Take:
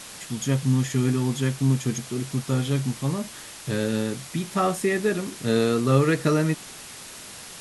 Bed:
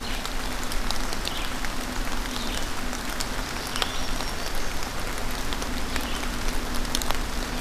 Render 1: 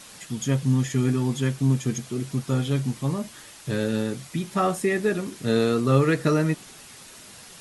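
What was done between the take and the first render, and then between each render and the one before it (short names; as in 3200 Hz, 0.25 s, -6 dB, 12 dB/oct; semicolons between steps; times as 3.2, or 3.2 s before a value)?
denoiser 6 dB, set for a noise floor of -41 dBFS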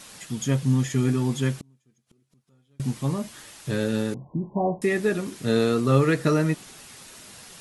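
1.59–2.8 flipped gate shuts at -27 dBFS, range -38 dB; 4.14–4.82 brick-wall FIR low-pass 1100 Hz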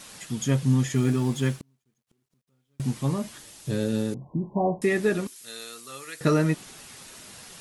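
0.95–2.83 G.711 law mismatch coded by A; 3.38–4.22 bell 1500 Hz -7.5 dB 2.1 oct; 5.27–6.21 differentiator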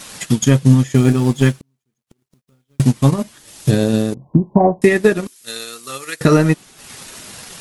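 transient shaper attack +8 dB, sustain -10 dB; maximiser +9.5 dB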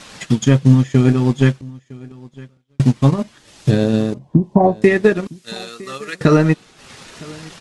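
air absorption 85 m; echo 0.959 s -22.5 dB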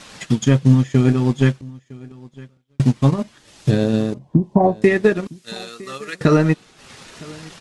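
gain -2 dB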